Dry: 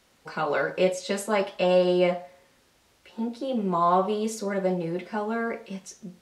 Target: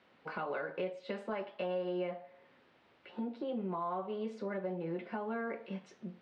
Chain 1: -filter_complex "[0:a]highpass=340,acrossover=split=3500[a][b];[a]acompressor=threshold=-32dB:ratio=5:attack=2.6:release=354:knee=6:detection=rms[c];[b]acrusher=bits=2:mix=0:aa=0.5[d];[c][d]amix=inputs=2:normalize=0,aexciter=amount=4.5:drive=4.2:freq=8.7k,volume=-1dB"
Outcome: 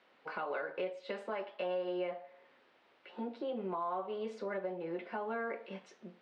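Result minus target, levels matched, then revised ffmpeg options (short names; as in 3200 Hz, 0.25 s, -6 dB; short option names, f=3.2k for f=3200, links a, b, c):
125 Hz band -7.5 dB
-filter_complex "[0:a]highpass=150,acrossover=split=3500[a][b];[a]acompressor=threshold=-32dB:ratio=5:attack=2.6:release=354:knee=6:detection=rms[c];[b]acrusher=bits=2:mix=0:aa=0.5[d];[c][d]amix=inputs=2:normalize=0,aexciter=amount=4.5:drive=4.2:freq=8.7k,volume=-1dB"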